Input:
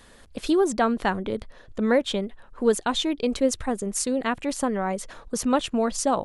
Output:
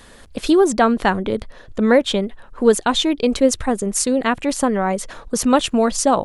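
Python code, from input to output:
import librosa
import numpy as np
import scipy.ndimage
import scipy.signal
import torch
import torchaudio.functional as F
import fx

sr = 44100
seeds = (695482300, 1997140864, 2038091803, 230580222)

y = fx.high_shelf(x, sr, hz=5200.0, db=5.0, at=(5.41, 5.94))
y = y * librosa.db_to_amplitude(7.0)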